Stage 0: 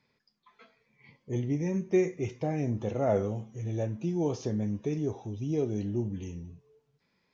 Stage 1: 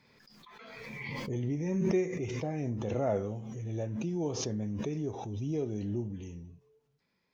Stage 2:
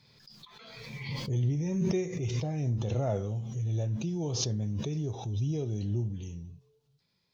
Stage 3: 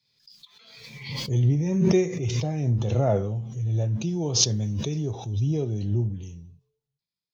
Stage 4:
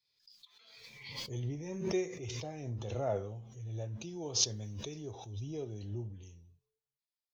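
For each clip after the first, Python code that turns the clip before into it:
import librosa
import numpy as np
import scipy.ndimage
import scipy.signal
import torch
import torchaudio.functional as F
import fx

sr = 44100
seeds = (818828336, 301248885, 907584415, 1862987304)

y1 = fx.pre_swell(x, sr, db_per_s=25.0)
y1 = F.gain(torch.from_numpy(y1), -4.5).numpy()
y2 = fx.graphic_eq_10(y1, sr, hz=(125, 250, 500, 1000, 2000, 4000), db=(7, -6, -3, -3, -7, 8))
y2 = F.gain(torch.from_numpy(y2), 2.0).numpy()
y3 = fx.band_widen(y2, sr, depth_pct=70)
y3 = F.gain(torch.from_numpy(y3), 6.0).numpy()
y4 = fx.peak_eq(y3, sr, hz=160.0, db=-11.5, octaves=1.4)
y4 = F.gain(torch.from_numpy(y4), -8.5).numpy()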